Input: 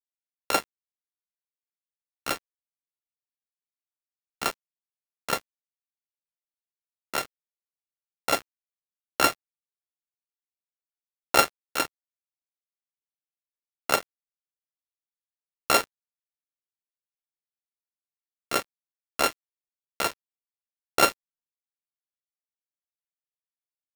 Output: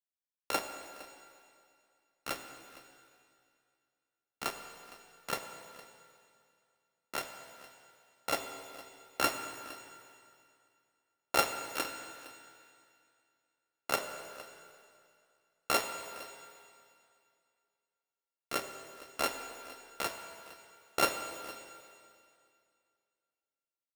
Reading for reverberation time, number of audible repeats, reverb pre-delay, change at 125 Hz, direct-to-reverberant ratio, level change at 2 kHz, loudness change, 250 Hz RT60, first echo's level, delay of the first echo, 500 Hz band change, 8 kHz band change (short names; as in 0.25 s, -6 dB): 2.3 s, 1, 15 ms, -7.5 dB, 6.0 dB, -7.5 dB, -10.0 dB, 2.2 s, -19.0 dB, 0.461 s, -7.5 dB, -7.5 dB